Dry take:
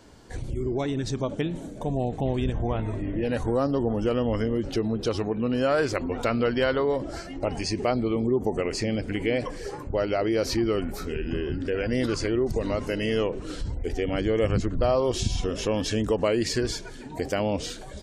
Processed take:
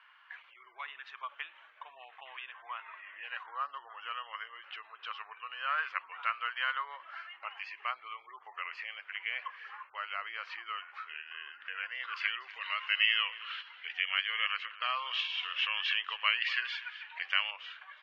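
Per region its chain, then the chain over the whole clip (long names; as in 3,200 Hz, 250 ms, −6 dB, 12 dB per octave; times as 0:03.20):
0:12.16–0:17.51: meter weighting curve D + single-tap delay 241 ms −18 dB
whole clip: elliptic band-pass filter 1,100–2,900 Hz, stop band 70 dB; dynamic equaliser 2,000 Hz, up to −4 dB, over −47 dBFS, Q 0.85; level +2.5 dB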